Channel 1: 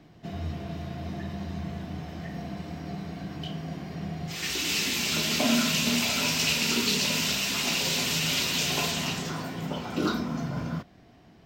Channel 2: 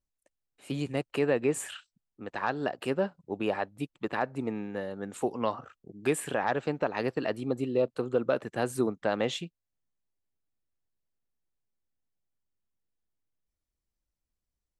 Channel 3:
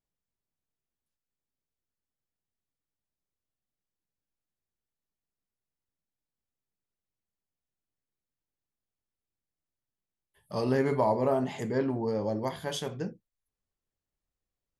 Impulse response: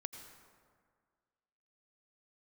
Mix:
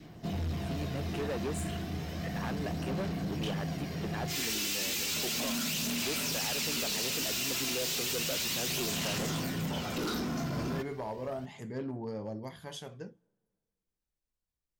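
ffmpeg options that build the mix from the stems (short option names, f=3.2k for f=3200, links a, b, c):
-filter_complex "[0:a]highshelf=f=6.5k:g=10,volume=-4.5dB[a];[1:a]volume=-10.5dB[b];[2:a]adynamicequalizer=threshold=0.0112:dfrequency=420:dqfactor=1.2:tfrequency=420:tqfactor=1.2:attack=5:release=100:ratio=0.375:range=2:mode=cutabove:tftype=bell,volume=-14.5dB,asplit=2[c][d];[d]volume=-22dB[e];[a][c]amix=inputs=2:normalize=0,aphaser=in_gain=1:out_gain=1:delay=3:decay=0.32:speed=0.33:type=sinusoidal,alimiter=level_in=2dB:limit=-24dB:level=0:latency=1,volume=-2dB,volume=0dB[f];[3:a]atrim=start_sample=2205[g];[e][g]afir=irnorm=-1:irlink=0[h];[b][f][h]amix=inputs=3:normalize=0,adynamicequalizer=threshold=0.002:dfrequency=900:dqfactor=1.7:tfrequency=900:tqfactor=1.7:attack=5:release=100:ratio=0.375:range=2:mode=cutabove:tftype=bell,acontrast=31,asoftclip=type=hard:threshold=-30.5dB"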